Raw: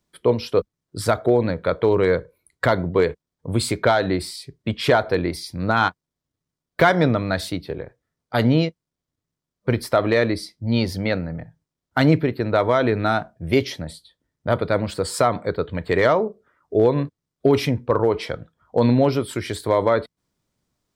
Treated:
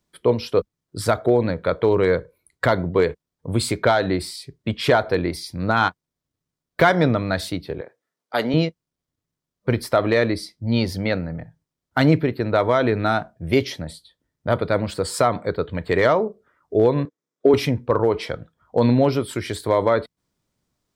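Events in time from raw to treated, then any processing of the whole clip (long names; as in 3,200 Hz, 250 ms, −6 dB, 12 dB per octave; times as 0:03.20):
0:07.81–0:08.54: high-pass filter 330 Hz
0:17.05–0:17.54: loudspeaker in its box 290–7,600 Hz, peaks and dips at 300 Hz +4 dB, 470 Hz +6 dB, 770 Hz −3 dB, 2,800 Hz −8 dB, 4,400 Hz −8 dB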